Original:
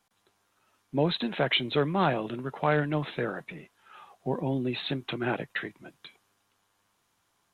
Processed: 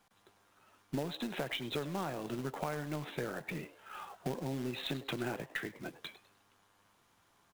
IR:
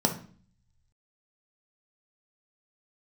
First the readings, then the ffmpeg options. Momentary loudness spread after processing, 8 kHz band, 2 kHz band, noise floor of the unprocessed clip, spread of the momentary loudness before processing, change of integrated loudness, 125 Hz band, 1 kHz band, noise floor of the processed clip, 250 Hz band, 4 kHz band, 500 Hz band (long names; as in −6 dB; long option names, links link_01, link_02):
9 LU, can't be measured, −9.0 dB, −73 dBFS, 14 LU, −10.0 dB, −9.0 dB, −10.5 dB, −70 dBFS, −8.5 dB, −10.0 dB, −10.0 dB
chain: -filter_complex "[0:a]highshelf=frequency=3300:gain=-6,acompressor=threshold=-39dB:ratio=10,acrusher=bits=3:mode=log:mix=0:aa=0.000001,aeval=exprs='0.0316*(cos(1*acos(clip(val(0)/0.0316,-1,1)))-cos(1*PI/2))+0.001*(cos(4*acos(clip(val(0)/0.0316,-1,1)))-cos(4*PI/2))':channel_layout=same,asplit=4[link_01][link_02][link_03][link_04];[link_02]adelay=101,afreqshift=140,volume=-17dB[link_05];[link_03]adelay=202,afreqshift=280,volume=-26.1dB[link_06];[link_04]adelay=303,afreqshift=420,volume=-35.2dB[link_07];[link_01][link_05][link_06][link_07]amix=inputs=4:normalize=0,volume=4.5dB"